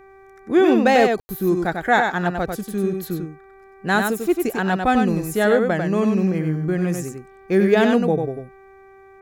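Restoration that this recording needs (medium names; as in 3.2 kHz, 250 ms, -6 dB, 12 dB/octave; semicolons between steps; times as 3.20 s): clip repair -6 dBFS; de-hum 387.9 Hz, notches 6; room tone fill 1.20–1.29 s; inverse comb 96 ms -5 dB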